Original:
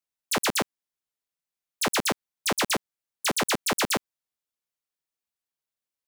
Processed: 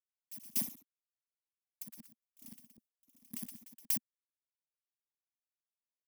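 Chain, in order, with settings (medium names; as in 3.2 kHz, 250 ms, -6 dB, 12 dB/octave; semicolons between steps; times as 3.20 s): bit-reversed sample order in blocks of 32 samples; pre-emphasis filter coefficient 0.8; gate with hold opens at -25 dBFS; resonant low shelf 300 Hz +9 dB, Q 3; 1.82–3.91 s: compressor with a negative ratio -29 dBFS, ratio -0.5; ever faster or slower copies 100 ms, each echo +1 st, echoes 3, each echo -6 dB; sawtooth tremolo in dB decaying 1.8 Hz, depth 27 dB; trim -7.5 dB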